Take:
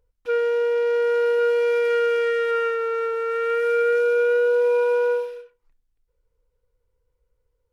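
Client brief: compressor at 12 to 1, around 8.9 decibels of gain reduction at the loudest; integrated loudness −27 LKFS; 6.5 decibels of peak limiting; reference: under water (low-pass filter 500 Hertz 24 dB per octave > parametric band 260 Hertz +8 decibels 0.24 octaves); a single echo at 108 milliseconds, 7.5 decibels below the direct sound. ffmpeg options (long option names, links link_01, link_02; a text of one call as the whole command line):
ffmpeg -i in.wav -af "acompressor=threshold=-26dB:ratio=12,alimiter=level_in=3dB:limit=-24dB:level=0:latency=1,volume=-3dB,lowpass=frequency=500:width=0.5412,lowpass=frequency=500:width=1.3066,equalizer=frequency=260:width_type=o:width=0.24:gain=8,aecho=1:1:108:0.422,volume=8dB" out.wav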